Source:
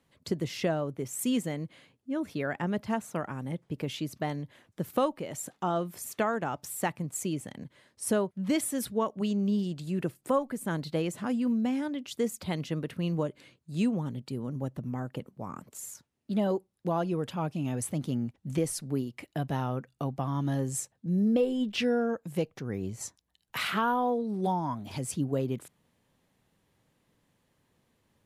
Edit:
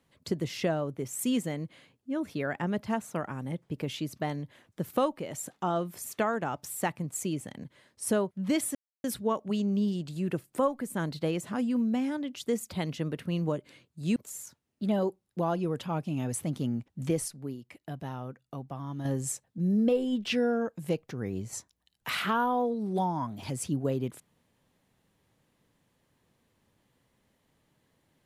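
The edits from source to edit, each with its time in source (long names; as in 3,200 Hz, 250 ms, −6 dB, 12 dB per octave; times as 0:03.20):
0:08.75: splice in silence 0.29 s
0:13.87–0:15.64: remove
0:18.76–0:20.53: clip gain −7 dB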